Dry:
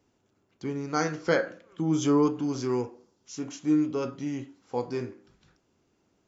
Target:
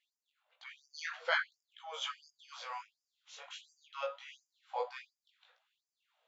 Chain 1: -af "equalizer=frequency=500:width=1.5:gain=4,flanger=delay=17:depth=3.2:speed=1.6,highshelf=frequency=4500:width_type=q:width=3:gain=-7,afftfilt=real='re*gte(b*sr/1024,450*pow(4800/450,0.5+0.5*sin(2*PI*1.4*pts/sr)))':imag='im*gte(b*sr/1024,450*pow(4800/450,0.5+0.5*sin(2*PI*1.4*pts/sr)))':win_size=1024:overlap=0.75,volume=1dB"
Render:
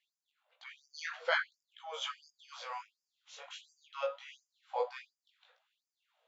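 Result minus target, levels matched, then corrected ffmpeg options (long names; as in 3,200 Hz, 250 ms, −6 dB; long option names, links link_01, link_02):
500 Hz band +2.5 dB
-af "flanger=delay=17:depth=3.2:speed=1.6,highshelf=frequency=4500:width_type=q:width=3:gain=-7,afftfilt=real='re*gte(b*sr/1024,450*pow(4800/450,0.5+0.5*sin(2*PI*1.4*pts/sr)))':imag='im*gte(b*sr/1024,450*pow(4800/450,0.5+0.5*sin(2*PI*1.4*pts/sr)))':win_size=1024:overlap=0.75,volume=1dB"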